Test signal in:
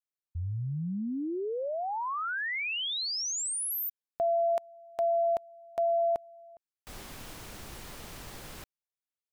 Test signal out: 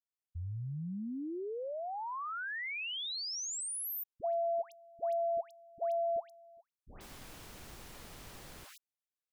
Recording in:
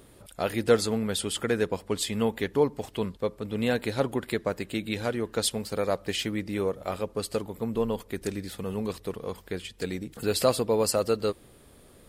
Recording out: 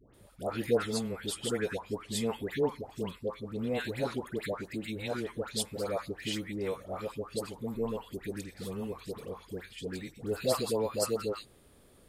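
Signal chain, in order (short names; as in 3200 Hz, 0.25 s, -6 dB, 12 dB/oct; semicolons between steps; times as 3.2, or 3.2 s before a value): dispersion highs, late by 0.141 s, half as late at 1100 Hz; gain -6 dB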